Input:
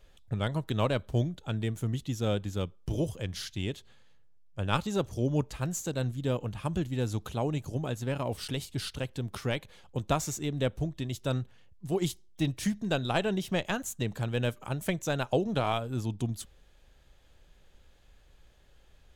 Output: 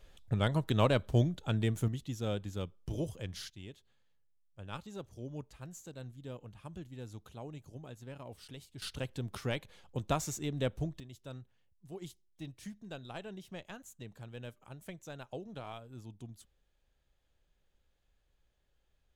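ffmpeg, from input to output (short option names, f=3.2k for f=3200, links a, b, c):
-af "asetnsamples=n=441:p=0,asendcmd='1.88 volume volume -6dB;3.5 volume volume -15dB;8.82 volume volume -4dB;11 volume volume -16dB',volume=0.5dB"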